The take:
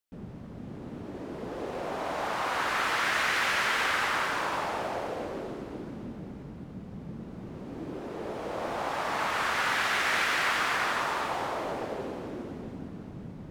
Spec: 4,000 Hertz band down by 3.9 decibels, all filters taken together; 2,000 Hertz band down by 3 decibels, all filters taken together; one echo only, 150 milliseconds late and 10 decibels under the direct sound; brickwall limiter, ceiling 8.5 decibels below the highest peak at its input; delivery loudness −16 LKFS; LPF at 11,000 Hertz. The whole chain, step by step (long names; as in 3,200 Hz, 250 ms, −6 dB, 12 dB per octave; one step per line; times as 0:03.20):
low-pass filter 11,000 Hz
parametric band 2,000 Hz −3 dB
parametric band 4,000 Hz −4 dB
brickwall limiter −24.5 dBFS
single-tap delay 150 ms −10 dB
level +19 dB